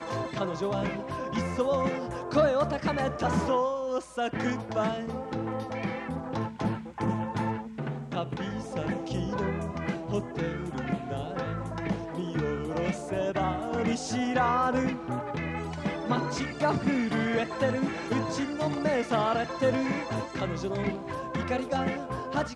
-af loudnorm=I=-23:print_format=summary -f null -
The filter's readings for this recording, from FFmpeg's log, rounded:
Input Integrated:    -30.3 LUFS
Input True Peak:     -12.4 dBTP
Input LRA:             4.3 LU
Input Threshold:     -40.3 LUFS